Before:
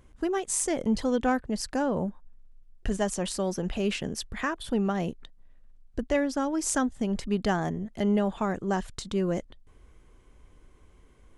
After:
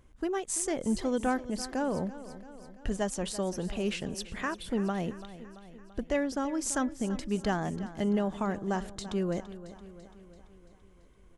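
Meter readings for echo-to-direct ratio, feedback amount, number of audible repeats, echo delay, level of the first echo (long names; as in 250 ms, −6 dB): −13.0 dB, 59%, 5, 337 ms, −15.0 dB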